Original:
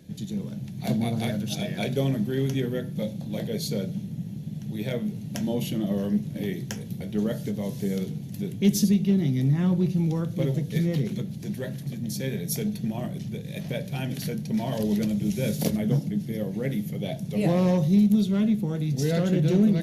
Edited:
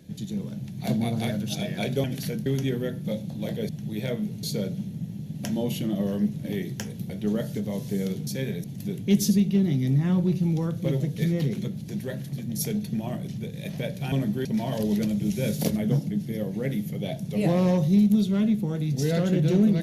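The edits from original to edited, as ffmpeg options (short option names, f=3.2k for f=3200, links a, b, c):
-filter_complex "[0:a]asplit=11[a][b][c][d][e][f][g][h][i][j][k];[a]atrim=end=2.042[l];[b]atrim=start=14.028:end=14.452[m];[c]atrim=start=2.368:end=3.602[n];[d]atrim=start=4.518:end=5.262[o];[e]atrim=start=3.598:end=4.522[p];[f]atrim=start=5.258:end=8.182[q];[g]atrim=start=12.118:end=12.492[r];[h]atrim=start=8.178:end=12.122[s];[i]atrim=start=12.488:end=14.032[t];[j]atrim=start=2.038:end=2.372[u];[k]atrim=start=14.448[v];[l][m]acrossfade=d=0.004:c1=hsin:c2=hsin[w];[w][n]acrossfade=d=0.004:c1=hsin:c2=hsin[x];[x][o]acrossfade=d=0.004:c1=hsin:c2=hsin[y];[y][p]acrossfade=d=0.004:c1=hsin:c2=hsin[z];[z][q]acrossfade=d=0.004:c1=hsin:c2=hsin[aa];[aa][r]acrossfade=d=0.004:c1=hsin:c2=hsin[ab];[ab][s]acrossfade=d=0.004:c1=hsin:c2=hsin[ac];[ac][t]acrossfade=d=0.004:c1=hsin:c2=hsin[ad];[ad][u]acrossfade=d=0.004:c1=hsin:c2=hsin[ae];[ae][v]acrossfade=d=0.004:c1=hsin:c2=hsin"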